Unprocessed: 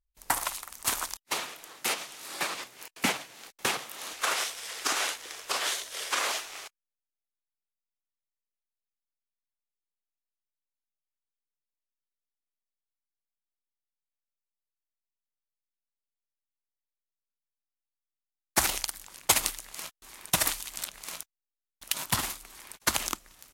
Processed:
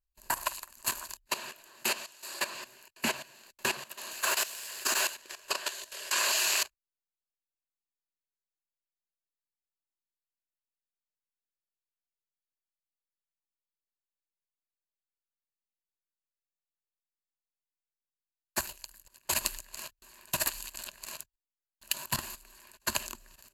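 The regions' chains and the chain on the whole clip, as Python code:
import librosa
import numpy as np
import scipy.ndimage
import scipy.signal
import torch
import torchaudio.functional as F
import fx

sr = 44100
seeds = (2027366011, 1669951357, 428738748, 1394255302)

y = fx.chain(x, sr, fx.bass_treble(bass_db=-9, treble_db=3),
    fx.doppler_dist(depth_ms=0.18), at=(2.04, 2.44))
y = fx.chain(y, sr, fx.high_shelf(hz=8200.0, db=8.0),
    fx.quant_float(bits=2), at=(4.11, 5.15))
y = fx.chain(y, sr, fx.highpass(hz=45.0, slope=12),
    fx.high_shelf(hz=2200.0, db=8.0),
    fx.env_flatten(amount_pct=100), at=(6.11, 6.63))
y = fx.chain(y, sr, fx.level_steps(step_db=16),
    fx.high_shelf(hz=11000.0, db=6.0), at=(18.6, 19.25))
y = fx.ripple_eq(y, sr, per_octave=1.4, db=10)
y = fx.level_steps(y, sr, step_db=14)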